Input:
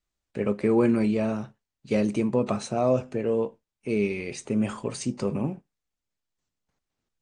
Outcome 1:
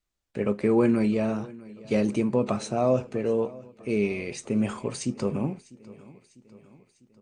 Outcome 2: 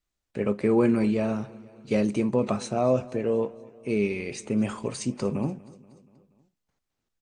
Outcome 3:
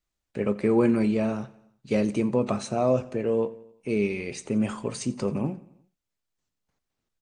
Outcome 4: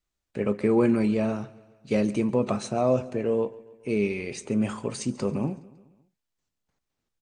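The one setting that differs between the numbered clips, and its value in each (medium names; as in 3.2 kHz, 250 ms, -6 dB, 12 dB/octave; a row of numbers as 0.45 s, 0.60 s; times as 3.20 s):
feedback delay, time: 649 ms, 239 ms, 88 ms, 139 ms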